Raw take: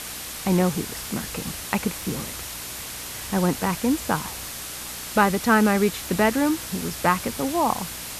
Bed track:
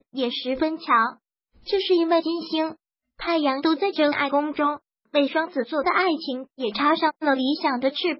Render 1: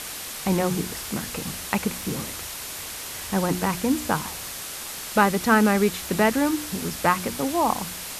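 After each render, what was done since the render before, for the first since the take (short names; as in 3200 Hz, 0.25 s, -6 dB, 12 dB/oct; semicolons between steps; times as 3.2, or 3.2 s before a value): de-hum 60 Hz, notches 6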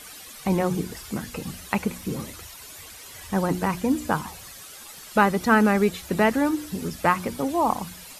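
denoiser 12 dB, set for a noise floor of -35 dBFS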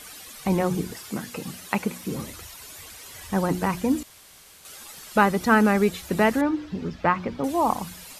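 0.94–2.14 HPF 140 Hz; 4.03–4.65 room tone; 6.41–7.44 air absorption 210 m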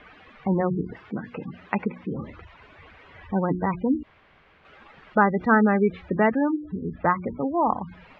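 spectral gate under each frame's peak -20 dB strong; LPF 2400 Hz 24 dB/oct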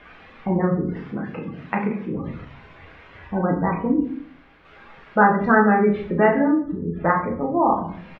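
doubler 35 ms -7 dB; shoebox room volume 74 m³, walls mixed, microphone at 0.66 m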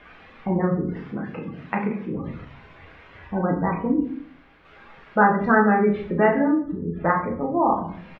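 gain -1.5 dB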